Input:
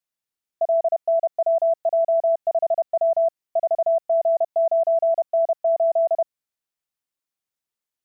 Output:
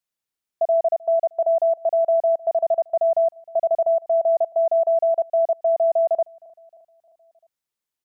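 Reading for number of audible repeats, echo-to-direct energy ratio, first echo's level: 3, -21.5 dB, -23.0 dB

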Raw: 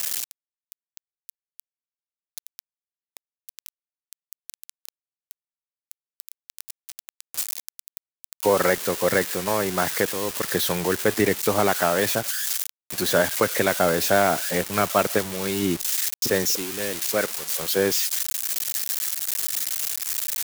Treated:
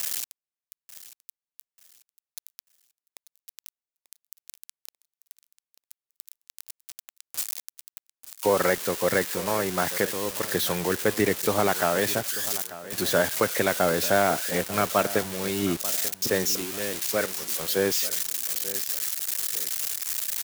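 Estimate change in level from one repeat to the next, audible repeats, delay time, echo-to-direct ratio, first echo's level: -10.0 dB, 2, 890 ms, -15.5 dB, -16.0 dB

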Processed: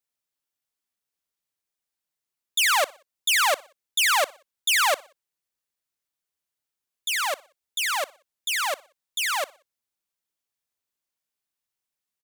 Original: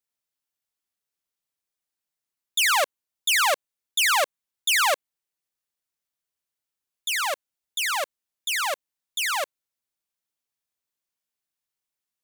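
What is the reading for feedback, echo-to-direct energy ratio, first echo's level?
42%, -22.0 dB, -23.0 dB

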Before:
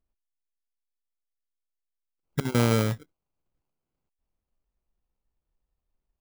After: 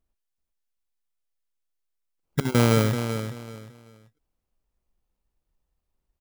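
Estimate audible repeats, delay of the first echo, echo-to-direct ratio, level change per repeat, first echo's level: 3, 384 ms, -8.5 dB, -11.5 dB, -9.0 dB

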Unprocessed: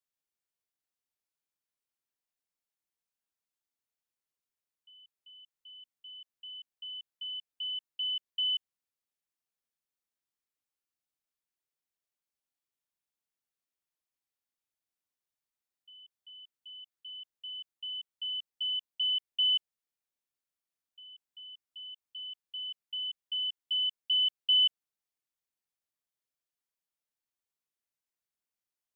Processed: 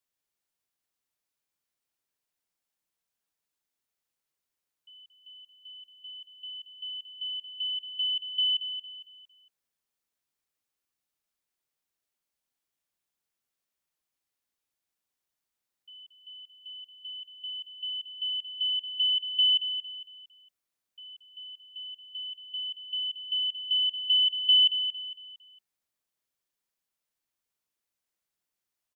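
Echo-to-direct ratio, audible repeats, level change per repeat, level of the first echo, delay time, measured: -9.0 dB, 3, -9.0 dB, -9.5 dB, 228 ms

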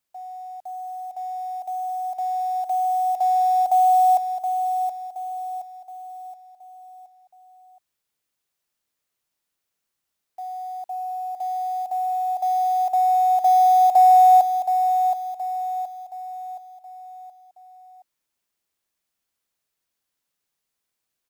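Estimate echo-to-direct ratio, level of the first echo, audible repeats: -6.5 dB, -7.5 dB, 4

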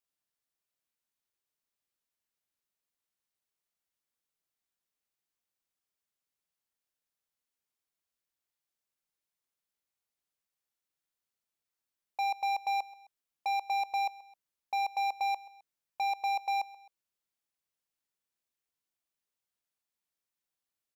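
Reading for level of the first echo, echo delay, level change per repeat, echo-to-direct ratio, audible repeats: -20.0 dB, 131 ms, -6.0 dB, -19.0 dB, 2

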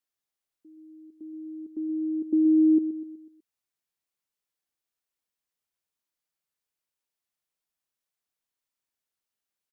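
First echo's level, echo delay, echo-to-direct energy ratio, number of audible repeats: -12.0 dB, 124 ms, -11.0 dB, 4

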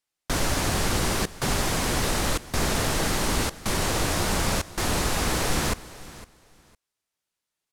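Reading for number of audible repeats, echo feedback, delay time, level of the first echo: 2, 20%, 507 ms, -18.0 dB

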